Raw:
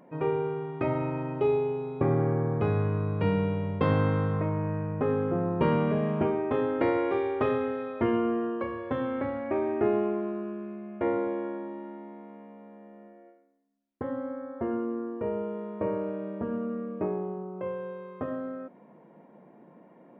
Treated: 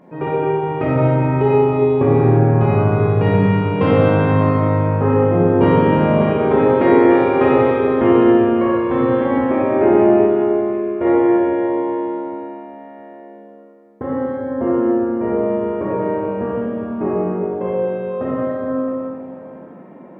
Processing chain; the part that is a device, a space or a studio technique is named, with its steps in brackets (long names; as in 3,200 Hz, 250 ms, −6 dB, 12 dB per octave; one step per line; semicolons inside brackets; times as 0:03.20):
swimming-pool hall (convolution reverb RT60 3.1 s, pre-delay 15 ms, DRR −7 dB; high-shelf EQ 3,700 Hz −7 dB)
level +6 dB